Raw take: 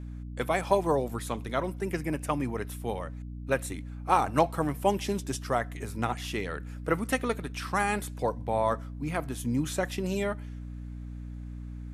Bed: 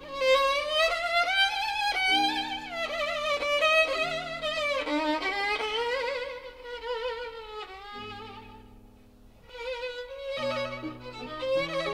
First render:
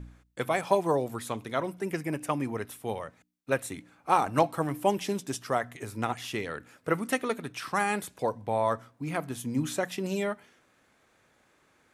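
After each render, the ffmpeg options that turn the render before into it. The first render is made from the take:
-af "bandreject=f=60:t=h:w=4,bandreject=f=120:t=h:w=4,bandreject=f=180:t=h:w=4,bandreject=f=240:t=h:w=4,bandreject=f=300:t=h:w=4"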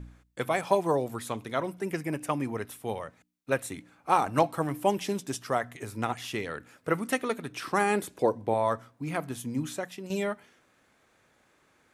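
-filter_complex "[0:a]asettb=1/sr,asplit=3[s0][s1][s2];[s0]atrim=end=7.524[s3];[s1]atrim=start=7.52:end=8.54,asetpts=PTS-STARTPTS,afade=t=in:d=0.004:c=qsin,afade=t=out:st=1.016:d=0.004:c=qsin,equalizer=f=350:w=1.3:g=9[s4];[s2]atrim=start=8.536[s5];[s3][s4]acrossfade=d=0.004:c1=hsin:c2=qsin[s6];[s6][s5]acrossfade=d=0.004:c1=qsin:c2=hsin,asplit=2[s7][s8];[s7]atrim=end=10.1,asetpts=PTS-STARTPTS,afade=t=out:st=9.31:d=0.79:silence=0.334965[s9];[s8]atrim=start=10.1,asetpts=PTS-STARTPTS,afade=t=in:d=0.004:c=hsin:silence=0.334965[s10];[s9][s10]concat=n=2:v=0:a=1"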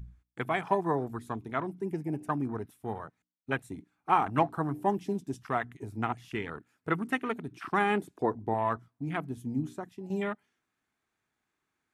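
-af "afwtdn=0.0141,equalizer=f=540:t=o:w=0.33:g=-13"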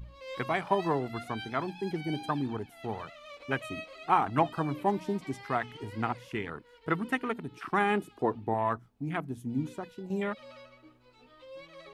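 -filter_complex "[1:a]volume=0.106[s0];[0:a][s0]amix=inputs=2:normalize=0"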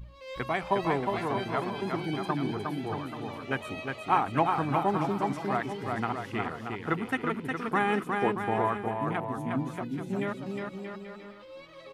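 -af "aecho=1:1:360|630|832.5|984.4|1098:0.631|0.398|0.251|0.158|0.1"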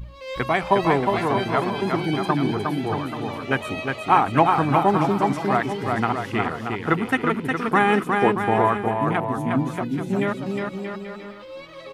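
-af "volume=2.66,alimiter=limit=0.708:level=0:latency=1"

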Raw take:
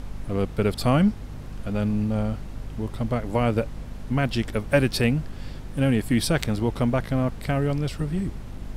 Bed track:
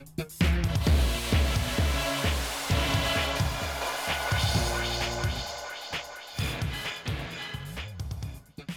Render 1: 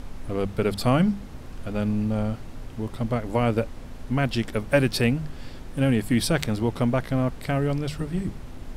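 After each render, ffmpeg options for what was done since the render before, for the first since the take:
-af "bandreject=f=50:t=h:w=6,bandreject=f=100:t=h:w=6,bandreject=f=150:t=h:w=6,bandreject=f=200:t=h:w=6"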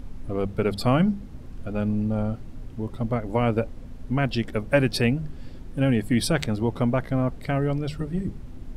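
-af "afftdn=nr=9:nf=-39"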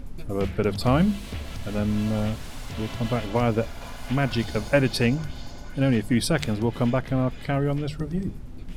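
-filter_complex "[1:a]volume=0.299[s0];[0:a][s0]amix=inputs=2:normalize=0"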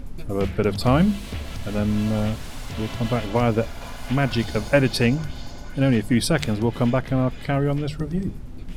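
-af "volume=1.33"

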